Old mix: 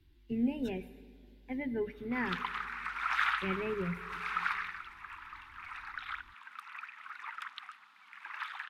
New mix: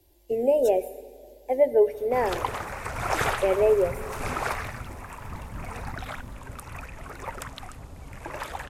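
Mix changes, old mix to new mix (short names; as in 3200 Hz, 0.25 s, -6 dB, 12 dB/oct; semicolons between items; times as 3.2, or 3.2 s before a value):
background: remove Chebyshev high-pass 790 Hz, order 3; master: remove EQ curve 120 Hz 0 dB, 200 Hz +11 dB, 600 Hz -29 dB, 1300 Hz +1 dB, 2500 Hz -2 dB, 3700 Hz -3 dB, 7200 Hz -23 dB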